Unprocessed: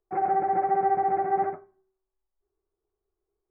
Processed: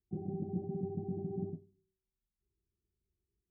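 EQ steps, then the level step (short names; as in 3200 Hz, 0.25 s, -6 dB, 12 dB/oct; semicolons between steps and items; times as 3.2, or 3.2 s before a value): HPF 40 Hz; ladder low-pass 260 Hz, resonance 40%; bell 93 Hz +8.5 dB 2.6 oct; +6.0 dB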